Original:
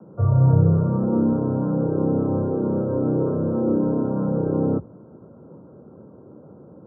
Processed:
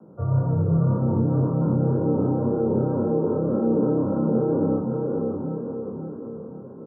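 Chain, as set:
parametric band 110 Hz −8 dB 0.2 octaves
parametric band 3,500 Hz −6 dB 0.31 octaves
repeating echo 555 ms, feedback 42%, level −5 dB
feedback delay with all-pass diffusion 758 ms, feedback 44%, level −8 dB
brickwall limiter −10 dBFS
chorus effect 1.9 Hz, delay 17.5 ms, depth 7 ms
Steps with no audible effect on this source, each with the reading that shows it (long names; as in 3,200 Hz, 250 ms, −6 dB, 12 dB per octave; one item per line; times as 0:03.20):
parametric band 3,500 Hz: nothing at its input above 1,400 Hz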